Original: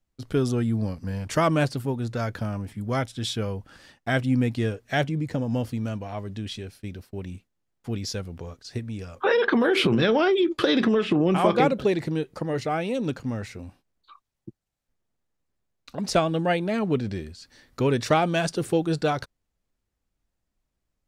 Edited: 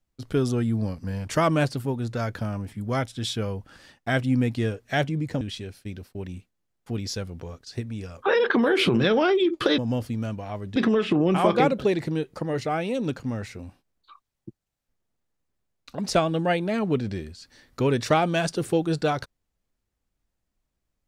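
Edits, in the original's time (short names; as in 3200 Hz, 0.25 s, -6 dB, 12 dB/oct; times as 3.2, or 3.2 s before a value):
5.41–6.39 move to 10.76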